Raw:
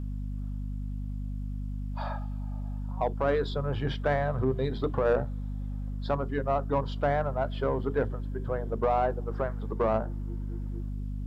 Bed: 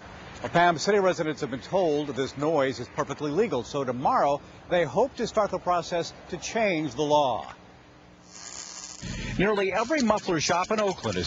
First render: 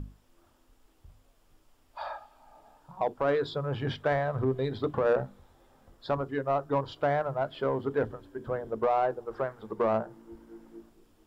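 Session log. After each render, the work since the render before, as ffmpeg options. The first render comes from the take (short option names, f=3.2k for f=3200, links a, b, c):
-af "bandreject=f=50:t=h:w=6,bandreject=f=100:t=h:w=6,bandreject=f=150:t=h:w=6,bandreject=f=200:t=h:w=6,bandreject=f=250:t=h:w=6"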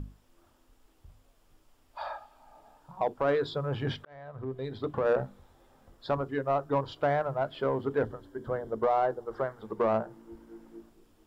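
-filter_complex "[0:a]asettb=1/sr,asplit=3[a][b][c];[a]atrim=end=8.024[d];[b]atrim=start=8.02:end=9.63,asetpts=PTS-STARTPTS,afade=t=in:d=0.004:c=qsin,afade=t=out:st=1.606:d=0.004:c=qsin,bandreject=f=2.5k:w=5.2[e];[c]atrim=start=9.626[f];[d][e]acrossfade=d=0.004:c1=hsin:c2=qsin[g];[g][f]acrossfade=d=0.004:c1=qsin:c2=hsin,asplit=2[h][i];[h]atrim=end=4.05,asetpts=PTS-STARTPTS,afade=t=out:st=4.046:d=0.004:c=hsin[j];[i]atrim=start=4.05,asetpts=PTS-STARTPTS,afade=t=in:d=1.17[k];[j][k]concat=n=2:v=0:a=1"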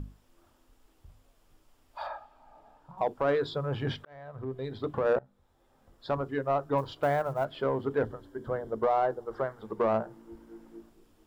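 -filter_complex "[0:a]asettb=1/sr,asplit=3[a][b][c];[a]atrim=end=2.074[d];[b]atrim=start=2.07:end=2.98,asetpts=PTS-STARTPTS,afade=t=in:d=0.004:c=qsin,afade=t=out:st=0.906:d=0.004:c=qsin,highshelf=f=4.5k:g=-11[e];[c]atrim=start=2.976[f];[d][e]acrossfade=d=0.004:c1=hsin:c2=qsin[g];[g][f]acrossfade=d=0.004:c1=qsin:c2=hsin,asettb=1/sr,asplit=3[h][i][j];[h]atrim=end=6.784[k];[i]atrim=start=6.78:end=7.45,asetpts=PTS-STARTPTS,afade=t=in:d=0.004:c=qsin,afade=t=out:st=0.666:d=0.004:c=qsin,acrusher=bits=8:mode=log:mix=0:aa=0.000001[l];[j]atrim=start=7.446[m];[k][l]acrossfade=d=0.004:c1=hsin:c2=qsin[n];[n][m]acrossfade=d=0.004:c1=qsin:c2=hsin,asplit=2[o][p];[o]atrim=end=5.19,asetpts=PTS-STARTPTS,afade=t=out:st=5.186:d=0.004:c=hsin:silence=0.0707946[q];[p]atrim=start=5.19,asetpts=PTS-STARTPTS,afade=t=in:d=1.06:silence=0.0707946[r];[q][r]concat=n=2:v=0:a=1"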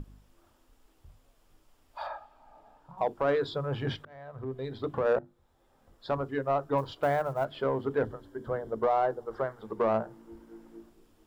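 -af "bandreject=f=50:t=h:w=6,bandreject=f=100:t=h:w=6,bandreject=f=150:t=h:w=6,bandreject=f=200:t=h:w=6,bandreject=f=250:t=h:w=6,bandreject=f=300:t=h:w=6,bandreject=f=350:t=h:w=6"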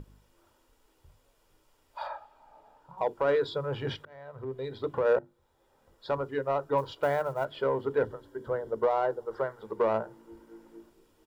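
-af "lowshelf=f=90:g=-9.5,aecho=1:1:2.1:0.35"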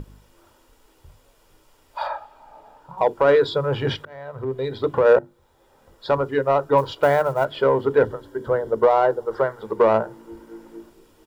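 -af "volume=10dB"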